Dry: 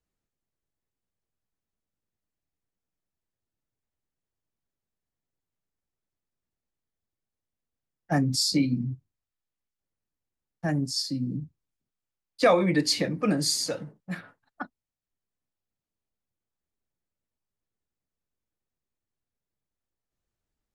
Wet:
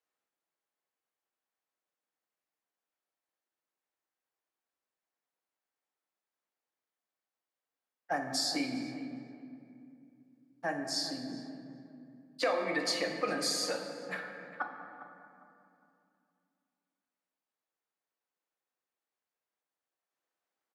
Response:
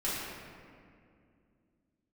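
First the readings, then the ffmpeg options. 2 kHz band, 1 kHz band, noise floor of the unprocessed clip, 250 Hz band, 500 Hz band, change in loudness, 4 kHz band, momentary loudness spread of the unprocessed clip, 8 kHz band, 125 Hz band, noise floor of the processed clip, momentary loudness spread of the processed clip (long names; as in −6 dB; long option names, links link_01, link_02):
−2.0 dB, −4.5 dB, below −85 dBFS, −11.0 dB, −7.5 dB, −8.5 dB, −5.5 dB, 18 LU, −6.5 dB, −21.0 dB, below −85 dBFS, 20 LU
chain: -filter_complex "[0:a]highpass=650,highshelf=frequency=2900:gain=-9.5,acompressor=threshold=-34dB:ratio=4,asplit=2[link_01][link_02];[link_02]adelay=404,lowpass=frequency=1700:poles=1,volume=-12dB,asplit=2[link_03][link_04];[link_04]adelay=404,lowpass=frequency=1700:poles=1,volume=0.28,asplit=2[link_05][link_06];[link_06]adelay=404,lowpass=frequency=1700:poles=1,volume=0.28[link_07];[link_01][link_03][link_05][link_07]amix=inputs=4:normalize=0,asplit=2[link_08][link_09];[1:a]atrim=start_sample=2205,asetrate=37044,aresample=44100[link_10];[link_09][link_10]afir=irnorm=-1:irlink=0,volume=-9.5dB[link_11];[link_08][link_11]amix=inputs=2:normalize=0,volume=2dB"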